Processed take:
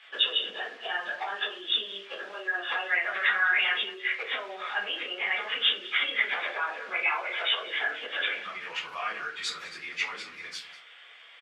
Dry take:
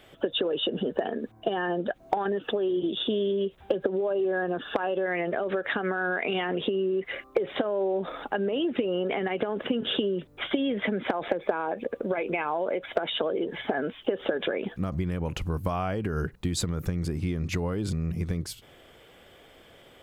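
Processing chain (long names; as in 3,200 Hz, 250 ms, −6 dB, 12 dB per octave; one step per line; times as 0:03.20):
spectral tilt +1.5 dB per octave
on a send: single-tap delay 351 ms −18 dB
on the sum: convolution reverb RT60 0.65 s, pre-delay 16 ms, DRR −10 dB
in parallel at −10 dB: bit reduction 5 bits
on the sum: low-pass filter 3,100 Hz 12 dB per octave
time stretch by phase vocoder 0.57×
downward compressor, threshold −15 dBFS, peak gain reduction 5.5 dB
Chebyshev high-pass filter 1,800 Hz, order 2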